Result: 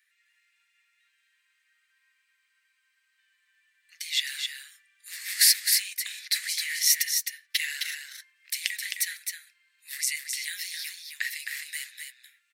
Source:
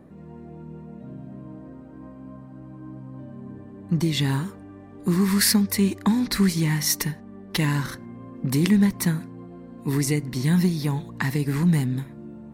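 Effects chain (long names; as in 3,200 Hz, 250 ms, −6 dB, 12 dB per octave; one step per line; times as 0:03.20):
Butterworth high-pass 1,800 Hz 48 dB per octave
on a send: single-tap delay 262 ms −5.5 dB
on the sum: level +2 dB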